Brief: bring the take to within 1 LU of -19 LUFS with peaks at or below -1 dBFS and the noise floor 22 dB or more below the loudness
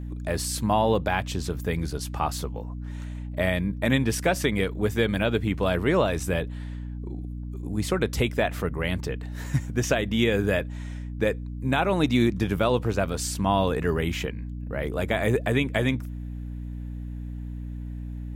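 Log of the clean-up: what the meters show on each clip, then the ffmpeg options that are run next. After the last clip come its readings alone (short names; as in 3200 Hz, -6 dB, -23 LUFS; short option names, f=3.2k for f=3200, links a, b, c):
hum 60 Hz; harmonics up to 300 Hz; hum level -31 dBFS; loudness -27.0 LUFS; peak -9.5 dBFS; loudness target -19.0 LUFS
-> -af "bandreject=f=60:t=h:w=4,bandreject=f=120:t=h:w=4,bandreject=f=180:t=h:w=4,bandreject=f=240:t=h:w=4,bandreject=f=300:t=h:w=4"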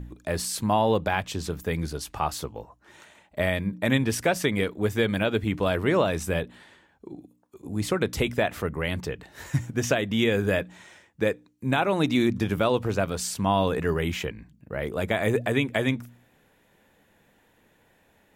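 hum none; loudness -26.5 LUFS; peak -9.5 dBFS; loudness target -19.0 LUFS
-> -af "volume=7.5dB"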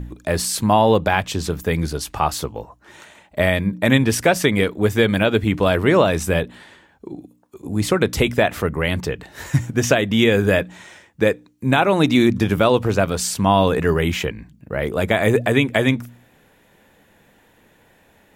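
loudness -19.0 LUFS; peak -2.0 dBFS; noise floor -56 dBFS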